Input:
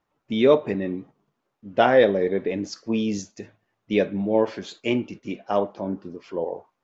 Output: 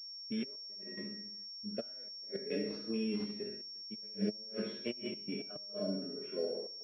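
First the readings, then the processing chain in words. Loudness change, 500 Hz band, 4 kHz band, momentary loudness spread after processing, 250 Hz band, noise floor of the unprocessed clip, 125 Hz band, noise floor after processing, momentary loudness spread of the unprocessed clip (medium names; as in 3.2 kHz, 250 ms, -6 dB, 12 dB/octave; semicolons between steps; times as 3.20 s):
-16.0 dB, -19.0 dB, -3.5 dB, 7 LU, -13.5 dB, -78 dBFS, -14.0 dB, -48 dBFS, 15 LU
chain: spectral sustain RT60 0.44 s; feedback comb 210 Hz, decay 0.25 s, harmonics all, mix 90%; flutter echo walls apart 11.6 m, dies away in 0.76 s; inverted gate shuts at -22 dBFS, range -36 dB; peak limiter -27.5 dBFS, peak gain reduction 8.5 dB; high-pass 130 Hz 24 dB/octave; gate with hold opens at -58 dBFS; flange 0.35 Hz, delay 6.4 ms, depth 3.1 ms, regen +26%; Butterworth band-stop 910 Hz, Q 1.6; trance gate "xxxx.x.xxxx" 108 bpm -12 dB; class-D stage that switches slowly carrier 5.5 kHz; trim +6 dB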